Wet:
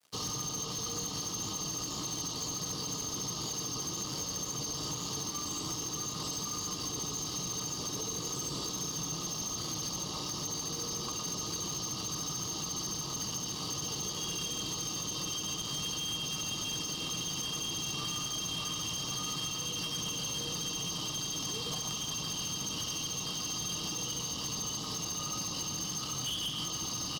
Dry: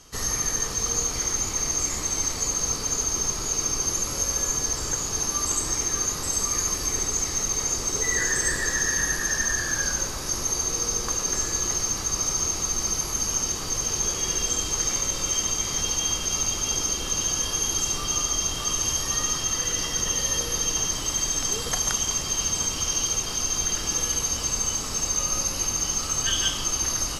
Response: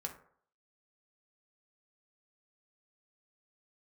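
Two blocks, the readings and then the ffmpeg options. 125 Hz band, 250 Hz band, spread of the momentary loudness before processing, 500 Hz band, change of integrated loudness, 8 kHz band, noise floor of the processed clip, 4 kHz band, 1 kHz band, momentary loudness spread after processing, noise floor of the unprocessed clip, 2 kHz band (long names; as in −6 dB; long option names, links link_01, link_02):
−5.5 dB, −4.0 dB, 2 LU, −9.0 dB, −10.5 dB, −13.0 dB, −39 dBFS, −5.0 dB, −8.0 dB, 1 LU, −31 dBFS, −14.5 dB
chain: -filter_complex "[0:a]lowpass=frequency=5200:width=0.5412,lowpass=frequency=5200:width=1.3066,equalizer=frequency=570:width_type=o:width=1.5:gain=-4.5,aecho=1:1:6.5:0.34,aecho=1:1:115:0.282,afftfilt=real='re*(1-between(b*sr/4096,1300,2700))':imag='im*(1-between(b*sr/4096,1300,2700))':win_size=4096:overlap=0.75,acrossover=split=230[link_01][link_02];[link_02]acompressor=threshold=-41dB:ratio=3[link_03];[link_01][link_03]amix=inputs=2:normalize=0,aeval=exprs='sgn(val(0))*max(abs(val(0))-0.00398,0)':channel_layout=same,adynamicequalizer=threshold=0.00224:dfrequency=3100:dqfactor=0.7:tfrequency=3100:tqfactor=0.7:attack=5:release=100:ratio=0.375:range=2:mode=boostabove:tftype=bell,highpass=160,asoftclip=type=hard:threshold=-36dB,volume=4dB"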